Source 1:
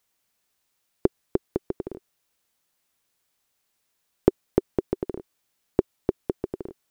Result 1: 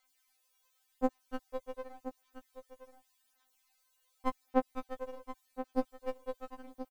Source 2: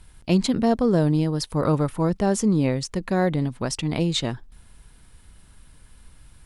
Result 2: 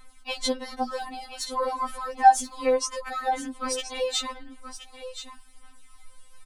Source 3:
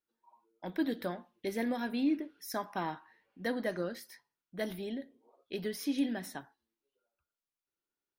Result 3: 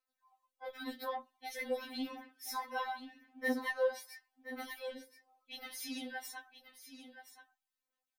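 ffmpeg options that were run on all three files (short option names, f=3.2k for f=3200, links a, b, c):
-af "aphaser=in_gain=1:out_gain=1:delay=2.1:decay=0.65:speed=0.88:type=sinusoidal,lowshelf=f=540:t=q:w=1.5:g=-9,aecho=1:1:1025:0.266,afftfilt=real='re*3.46*eq(mod(b,12),0)':imag='im*3.46*eq(mod(b,12),0)':win_size=2048:overlap=0.75"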